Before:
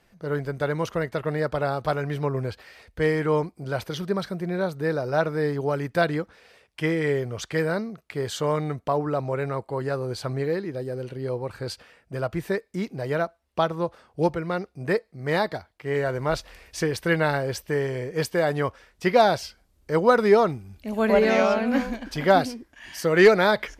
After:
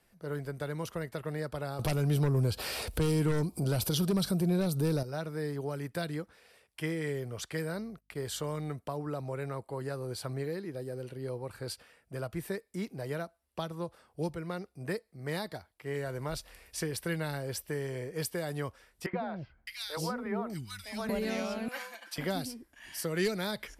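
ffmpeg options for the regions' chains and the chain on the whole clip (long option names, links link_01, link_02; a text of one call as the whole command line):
ffmpeg -i in.wav -filter_complex "[0:a]asettb=1/sr,asplit=3[link_01][link_02][link_03];[link_01]atrim=end=1.794[link_04];[link_02]atrim=start=1.79:end=5.03,asetpts=PTS-STARTPTS,afade=type=in:duration=0.004:curve=qsin,afade=type=out:start_time=3.236:duration=0.004:curve=qsin,equalizer=frequency=1900:width=3.1:gain=-11.5,acompressor=mode=upward:threshold=-28dB:ratio=2.5:attack=3.2:release=140:knee=2.83:detection=peak,aeval=exprs='0.282*sin(PI/2*2.24*val(0)/0.282)':channel_layout=same[link_05];[link_03]atrim=start=5.026[link_06];[link_04][link_05]acrossfade=duration=0.004:curve1=hsin:curve2=qsin[link_07];[link_07][link_06]acrossfade=duration=0.004:curve1=qsin:curve2=hsin,asettb=1/sr,asplit=3[link_08][link_09][link_10];[link_08]atrim=end=7.744[link_11];[link_09]atrim=start=7.74:end=8.71,asetpts=PTS-STARTPTS,afade=type=in:duration=0.004:curve=qsin,afade=type=out:start_time=0.966:duration=0.004:curve=qsin,aeval=exprs='val(0)+0.002*(sin(2*PI*50*n/s)+sin(2*PI*2*50*n/s)/2+sin(2*PI*3*50*n/s)/3+sin(2*PI*4*50*n/s)/4+sin(2*PI*5*50*n/s)/5)':channel_layout=same,agate=range=-17dB:threshold=-45dB:ratio=16:release=100:detection=peak[link_12];[link_10]atrim=start=8.706[link_13];[link_11][link_12]acrossfade=duration=0.004:curve1=hsin:curve2=qsin[link_14];[link_14][link_13]acrossfade=duration=0.004:curve1=qsin:curve2=hsin,asettb=1/sr,asplit=3[link_15][link_16][link_17];[link_15]atrim=end=19.064[link_18];[link_16]atrim=start=19.06:end=21.09,asetpts=PTS-STARTPTS,afade=type=in:duration=0.004:curve=qsin,afade=type=out:start_time=2.026:duration=0.004:curve=qsin,equalizer=frequency=430:width_type=o:width=0.73:gain=-5.5,acrossover=split=420|2200[link_19][link_20][link_21];[link_19]adelay=70[link_22];[link_21]adelay=610[link_23];[link_22][link_20][link_23]amix=inputs=3:normalize=0,atrim=end_sample=89523[link_24];[link_17]atrim=start=21.086[link_25];[link_18][link_24]acrossfade=duration=0.004:curve1=hsin:curve2=qsin[link_26];[link_26][link_25]acrossfade=duration=0.004:curve1=qsin:curve2=hsin,asettb=1/sr,asplit=3[link_27][link_28][link_29];[link_27]atrim=end=21.684[link_30];[link_28]atrim=start=21.68:end=22.18,asetpts=PTS-STARTPTS,afade=type=in:duration=0.004:curve=qsin,afade=type=out:start_time=0.496:duration=0.004:curve=qsin,highpass=960,aecho=1:1:5.8:0.71,atrim=end_sample=22050[link_31];[link_29]atrim=start=22.176[link_32];[link_30][link_31]acrossfade=duration=0.004:curve1=hsin:curve2=qsin[link_33];[link_33][link_32]acrossfade=duration=0.004:curve1=qsin:curve2=hsin,equalizer=frequency=11000:width=0.98:gain=12,acrossover=split=280|3000[link_34][link_35][link_36];[link_35]acompressor=threshold=-28dB:ratio=6[link_37];[link_34][link_37][link_36]amix=inputs=3:normalize=0,bandreject=frequency=6400:width=17,volume=-7.5dB" out.wav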